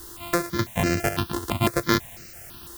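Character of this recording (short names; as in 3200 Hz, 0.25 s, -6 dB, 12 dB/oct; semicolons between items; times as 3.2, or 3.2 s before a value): a buzz of ramps at a fixed pitch in blocks of 128 samples; chopped level 1.7 Hz, depth 65%, duty 85%; a quantiser's noise floor 8-bit, dither triangular; notches that jump at a steady rate 6 Hz 640–3400 Hz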